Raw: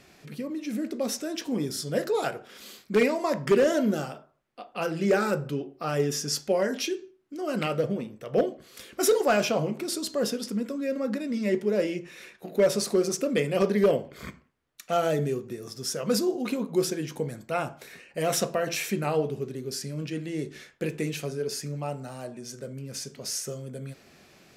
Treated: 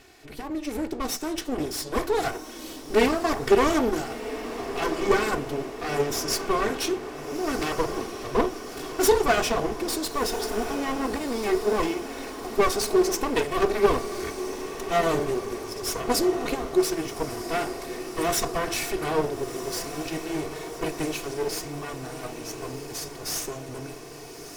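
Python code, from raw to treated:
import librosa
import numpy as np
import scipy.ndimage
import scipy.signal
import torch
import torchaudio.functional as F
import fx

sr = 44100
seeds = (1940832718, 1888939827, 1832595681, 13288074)

y = fx.lower_of_two(x, sr, delay_ms=2.7)
y = fx.echo_diffused(y, sr, ms=1374, feedback_pct=64, wet_db=-10.5)
y = y * librosa.db_to_amplitude(3.5)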